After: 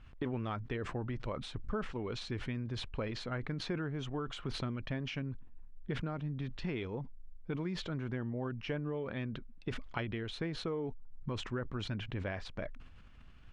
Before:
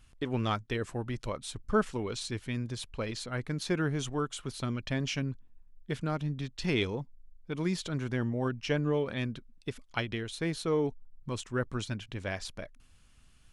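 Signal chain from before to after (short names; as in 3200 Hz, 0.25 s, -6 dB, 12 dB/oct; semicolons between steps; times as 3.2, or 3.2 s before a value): compressor 6:1, threshold -39 dBFS, peak gain reduction 17 dB; LPF 2400 Hz 12 dB/oct; sustainer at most 54 dB/s; gain +4 dB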